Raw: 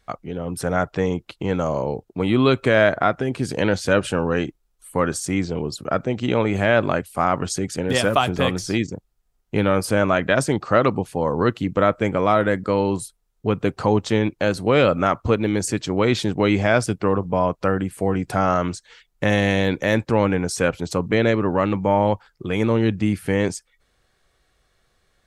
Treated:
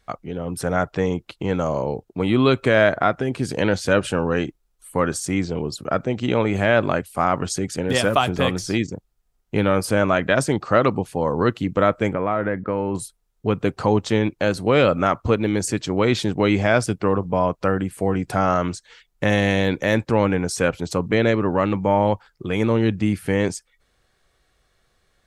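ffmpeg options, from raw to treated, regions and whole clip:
ffmpeg -i in.wav -filter_complex "[0:a]asettb=1/sr,asplit=3[link_01][link_02][link_03];[link_01]atrim=end=12.134[link_04];[link_02]atrim=start=12.13:end=12.95,asetpts=PTS-STARTPTS,afade=type=in:duration=0.004:curve=qsin,afade=type=out:start_time=0.816:duration=0.004:curve=qsin,lowpass=frequency=2400:width=0.5412,lowpass=frequency=2400:width=1.3066,acompressor=threshold=-20dB:ratio=2:attack=3.2:release=140:knee=1:detection=peak[link_05];[link_03]atrim=start=12.946[link_06];[link_04][link_05]acrossfade=duration=0.004:curve1=hsin:curve2=qsin[link_07];[link_07][link_06]acrossfade=duration=0.004:curve1=qsin:curve2=hsin" out.wav

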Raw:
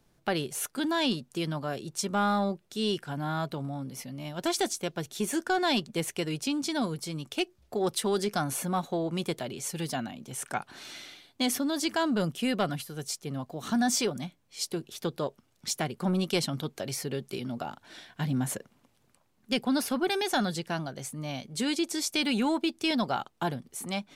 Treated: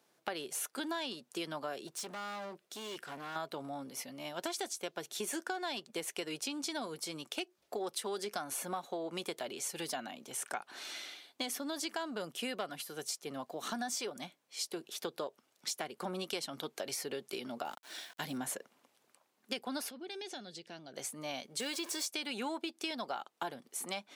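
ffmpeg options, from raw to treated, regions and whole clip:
ffmpeg -i in.wav -filter_complex "[0:a]asettb=1/sr,asplit=3[link_01][link_02][link_03];[link_01]atrim=end=1.874[link_04];[link_02]atrim=start=1.87:end=3.36,asetpts=PTS-STARTPTS,afade=type=in:duration=0.004:curve=qsin,afade=type=out:start_time=1.486:duration=0.004:curve=qsin,bandreject=frequency=860:width=10,acompressor=threshold=-31dB:ratio=4:attack=3.2:release=140:knee=1:detection=peak,asoftclip=type=hard:threshold=-37dB[link_05];[link_03]atrim=start=3.356[link_06];[link_04][link_05]acrossfade=duration=0.004:curve1=hsin:curve2=qsin[link_07];[link_07][link_06]acrossfade=duration=0.004:curve1=qsin:curve2=hsin,asettb=1/sr,asplit=3[link_08][link_09][link_10];[link_08]atrim=end=17.654[link_11];[link_09]atrim=start=17.65:end=18.38,asetpts=PTS-STARTPTS,afade=type=in:duration=0.004:curve=qsin,afade=type=out:start_time=0.726:duration=0.004:curve=qsin,aemphasis=mode=production:type=cd,aeval=exprs='val(0)*gte(abs(val(0)),0.00237)':channel_layout=same[link_12];[link_10]atrim=start=18.376[link_13];[link_11][link_12]acrossfade=duration=0.004:curve1=hsin:curve2=qsin[link_14];[link_14][link_13]acrossfade=duration=0.004:curve1=qsin:curve2=hsin,asettb=1/sr,asplit=3[link_15][link_16][link_17];[link_15]atrim=end=19.904[link_18];[link_16]atrim=start=19.9:end=20.94,asetpts=PTS-STARTPTS,afade=type=in:duration=0.004:curve=qsin,afade=type=out:start_time=1.036:duration=0.004:curve=qsin,lowpass=5000,equalizer=frequency=1100:width_type=o:width=1.8:gain=-14.5,acompressor=threshold=-40dB:ratio=4:attack=3.2:release=140:knee=1:detection=peak[link_19];[link_17]atrim=start=20.936[link_20];[link_18][link_19]acrossfade=duration=0.004:curve1=hsin:curve2=qsin[link_21];[link_21][link_20]acrossfade=duration=0.004:curve1=qsin:curve2=hsin,asettb=1/sr,asplit=3[link_22][link_23][link_24];[link_22]atrim=end=21.604[link_25];[link_23]atrim=start=21.6:end=22.07,asetpts=PTS-STARTPTS,afade=type=in:duration=0.004:curve=qsin,afade=type=out:start_time=0.466:duration=0.004:curve=qsin,aeval=exprs='val(0)+0.5*0.02*sgn(val(0))':channel_layout=same,aecho=1:1:1.8:0.33,atrim=end_sample=20727[link_26];[link_24]atrim=start=22.066[link_27];[link_25][link_26]acrossfade=duration=0.004:curve1=hsin:curve2=qsin[link_28];[link_28][link_27]acrossfade=duration=0.004:curve1=qsin:curve2=hsin,highpass=390,acompressor=threshold=-35dB:ratio=6" out.wav

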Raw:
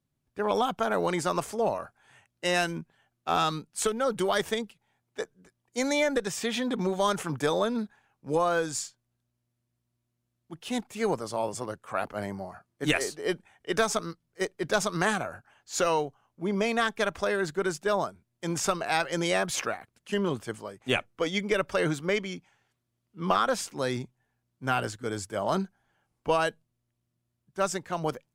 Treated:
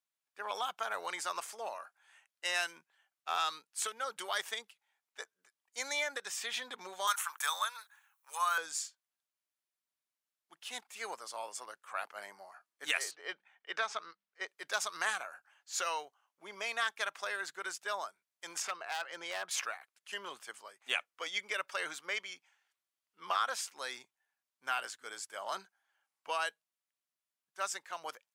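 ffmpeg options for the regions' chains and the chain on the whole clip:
ffmpeg -i in.wav -filter_complex "[0:a]asettb=1/sr,asplit=3[link_01][link_02][link_03];[link_01]atrim=end=7.074[link_04];[link_02]atrim=start=7.07:end=8.58,asetpts=PTS-STARTPTS,afade=type=in:duration=0.004:curve=qsin,afade=type=out:start_time=1.506:duration=0.004:curve=qsin,highpass=frequency=1100:width_type=q:width=2,aemphasis=mode=production:type=bsi,bandreject=frequency=4900:width=6.1[link_05];[link_03]atrim=start=8.576[link_06];[link_04][link_05]acrossfade=duration=0.004:curve1=hsin:curve2=qsin[link_07];[link_07][link_06]acrossfade=duration=0.004:curve1=qsin:curve2=hsin,asettb=1/sr,asplit=3[link_08][link_09][link_10];[link_08]atrim=end=13.114[link_11];[link_09]atrim=start=13.11:end=14.48,asetpts=PTS-STARTPTS,afade=type=in:duration=0.004:curve=qsin,afade=type=out:start_time=1.366:duration=0.004:curve=qsin,lowpass=3600,bandreject=frequency=99.95:width_type=h:width=4,bandreject=frequency=199.9:width_type=h:width=4[link_12];[link_10]atrim=start=14.476[link_13];[link_11][link_12]acrossfade=duration=0.004:curve1=hsin:curve2=qsin[link_14];[link_14][link_13]acrossfade=duration=0.004:curve1=qsin:curve2=hsin,asettb=1/sr,asplit=3[link_15][link_16][link_17];[link_15]atrim=end=18.624[link_18];[link_16]atrim=start=18.62:end=19.51,asetpts=PTS-STARTPTS,afade=type=in:duration=0.004:curve=qsin,afade=type=out:start_time=0.886:duration=0.004:curve=qsin,lowpass=frequency=1700:poles=1,acompressor=mode=upward:threshold=-30dB:ratio=2.5:attack=3.2:release=140:knee=2.83:detection=peak,aeval=exprs='0.106*(abs(mod(val(0)/0.106+3,4)-2)-1)':channel_layout=same[link_19];[link_17]atrim=start=19.506[link_20];[link_18][link_19]acrossfade=duration=0.004:curve1=hsin:curve2=qsin[link_21];[link_21][link_20]acrossfade=duration=0.004:curve1=qsin:curve2=hsin,deesser=0.45,highpass=1100,volume=-4dB" out.wav

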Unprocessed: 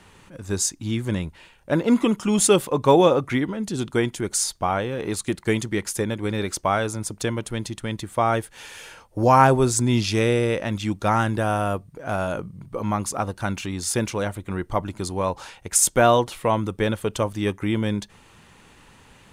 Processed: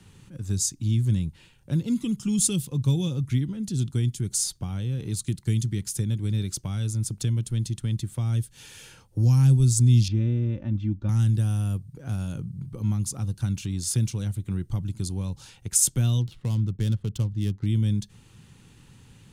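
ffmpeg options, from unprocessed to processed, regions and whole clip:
ffmpeg -i in.wav -filter_complex "[0:a]asettb=1/sr,asplit=3[link_01][link_02][link_03];[link_01]atrim=end=10.084[link_04];[link_02]atrim=start=10.08:end=11.09,asetpts=PTS-STARTPTS,afade=type=in:duration=0.004:curve=qsin,afade=type=out:start_time=1.006:duration=0.004:curve=qsin,lowpass=1400,aecho=1:1:3.4:0.66,atrim=end_sample=44541[link_05];[link_03]atrim=start=11.086[link_06];[link_04][link_05]acrossfade=duration=0.004:curve1=hsin:curve2=qsin[link_07];[link_07][link_06]acrossfade=duration=0.004:curve1=qsin:curve2=hsin,asettb=1/sr,asplit=3[link_08][link_09][link_10];[link_08]atrim=end=16.214[link_11];[link_09]atrim=start=16.21:end=17.66,asetpts=PTS-STARTPTS,afade=type=in:duration=0.004:curve=qsin,afade=type=out:start_time=1.446:duration=0.004:curve=qsin,bandreject=frequency=2400:width=14,adynamicsmooth=sensitivity=6.5:basefreq=1200[link_12];[link_10]atrim=start=17.656[link_13];[link_11][link_12]acrossfade=duration=0.004:curve1=hsin:curve2=qsin[link_14];[link_14][link_13]acrossfade=duration=0.004:curve1=qsin:curve2=hsin,equalizer=frequency=640:width=6.6:gain=-8.5,acrossover=split=220|3000[link_15][link_16][link_17];[link_16]acompressor=threshold=-37dB:ratio=4[link_18];[link_15][link_18][link_17]amix=inputs=3:normalize=0,equalizer=frequency=125:width_type=o:width=1:gain=10,equalizer=frequency=500:width_type=o:width=1:gain=-4,equalizer=frequency=1000:width_type=o:width=1:gain=-8,equalizer=frequency=2000:width_type=o:width=1:gain=-6,volume=-2dB" out.wav

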